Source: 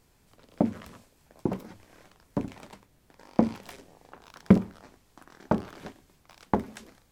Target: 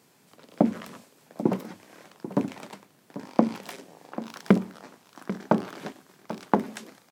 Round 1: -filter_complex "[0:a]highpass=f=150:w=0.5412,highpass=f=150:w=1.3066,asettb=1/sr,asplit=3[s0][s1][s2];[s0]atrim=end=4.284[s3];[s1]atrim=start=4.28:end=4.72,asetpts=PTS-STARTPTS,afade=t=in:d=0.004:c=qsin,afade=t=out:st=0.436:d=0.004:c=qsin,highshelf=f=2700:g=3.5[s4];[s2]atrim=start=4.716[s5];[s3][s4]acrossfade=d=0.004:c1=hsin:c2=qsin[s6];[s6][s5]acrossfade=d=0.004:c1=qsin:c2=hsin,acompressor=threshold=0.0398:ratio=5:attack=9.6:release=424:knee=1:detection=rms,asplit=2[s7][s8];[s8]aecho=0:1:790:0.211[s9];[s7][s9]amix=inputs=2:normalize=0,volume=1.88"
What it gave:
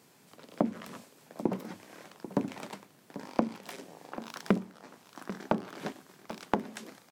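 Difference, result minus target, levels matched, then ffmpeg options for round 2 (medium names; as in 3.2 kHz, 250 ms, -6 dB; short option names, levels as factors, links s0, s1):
compression: peak gain reduction +8 dB
-filter_complex "[0:a]highpass=f=150:w=0.5412,highpass=f=150:w=1.3066,asettb=1/sr,asplit=3[s0][s1][s2];[s0]atrim=end=4.284[s3];[s1]atrim=start=4.28:end=4.72,asetpts=PTS-STARTPTS,afade=t=in:d=0.004:c=qsin,afade=t=out:st=0.436:d=0.004:c=qsin,highshelf=f=2700:g=3.5[s4];[s2]atrim=start=4.716[s5];[s3][s4]acrossfade=d=0.004:c1=hsin:c2=qsin[s6];[s6][s5]acrossfade=d=0.004:c1=qsin:c2=hsin,acompressor=threshold=0.126:ratio=5:attack=9.6:release=424:knee=1:detection=rms,asplit=2[s7][s8];[s8]aecho=0:1:790:0.211[s9];[s7][s9]amix=inputs=2:normalize=0,volume=1.88"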